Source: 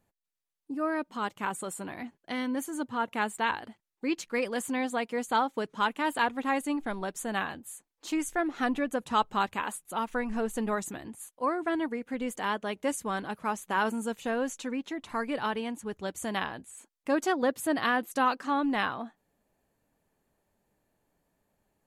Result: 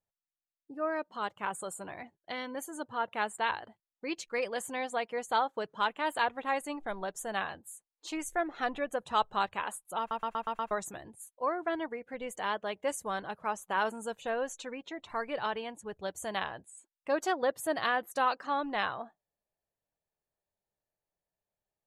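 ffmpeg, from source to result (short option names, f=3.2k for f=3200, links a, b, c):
-filter_complex "[0:a]asplit=7[a][b][c][d][e][f][g];[a]atrim=end=10.112[h];[b]atrim=start=9.988:end=10.112[i];[c]atrim=start=9.988:end=10.112[j];[d]atrim=start=9.988:end=10.112[k];[e]atrim=start=9.988:end=10.112[l];[f]atrim=start=9.988:end=10.112[m];[g]atrim=start=10.708[n];[h][i]acrossfade=d=0.004:c1=hsin:c2=hsin[o];[o][j]acrossfade=d=0.004:c1=hsin:c2=hsin[p];[p][k]acrossfade=d=0.004:c1=hsin:c2=hsin[q];[q][l]acrossfade=d=0.004:c1=hsin:c2=hsin[r];[r][m]acrossfade=d=0.004:c1=hsin:c2=hsin[s];[s][n]acrossfade=d=0.004:c1=hsin:c2=hsin,afftdn=nr=15:nf=-52,equalizer=f=250:t=o:w=0.67:g=-10,equalizer=f=630:t=o:w=0.67:g=4,equalizer=f=4k:t=o:w=0.67:g=3,volume=-3dB"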